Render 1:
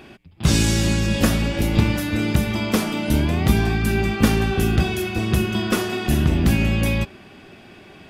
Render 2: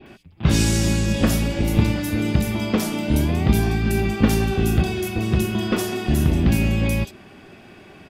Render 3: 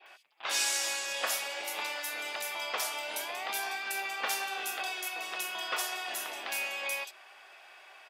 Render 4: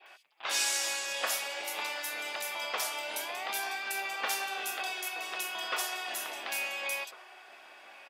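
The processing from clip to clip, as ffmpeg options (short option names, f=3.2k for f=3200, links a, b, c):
-filter_complex "[0:a]acrossover=split=3600[a][b];[b]adelay=60[c];[a][c]amix=inputs=2:normalize=0,adynamicequalizer=threshold=0.0112:dfrequency=1400:dqfactor=1.1:tfrequency=1400:tqfactor=1.1:attack=5:release=100:ratio=0.375:range=2:mode=cutabove:tftype=bell"
-af "highpass=f=710:w=0.5412,highpass=f=710:w=1.3066,volume=-3.5dB"
-filter_complex "[0:a]asplit=2[a][b];[b]adelay=1399,volume=-15dB,highshelf=f=4k:g=-31.5[c];[a][c]amix=inputs=2:normalize=0"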